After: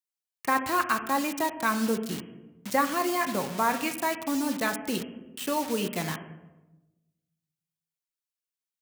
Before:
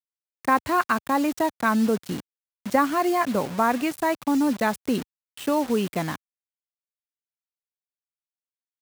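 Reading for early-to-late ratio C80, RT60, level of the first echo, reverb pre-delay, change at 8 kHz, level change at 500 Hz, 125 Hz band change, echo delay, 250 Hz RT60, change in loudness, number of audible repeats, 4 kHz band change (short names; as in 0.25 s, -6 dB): 16.5 dB, 1.1 s, none, 5 ms, +3.0 dB, -5.0 dB, -4.5 dB, none, 1.4 s, -4.5 dB, none, +1.0 dB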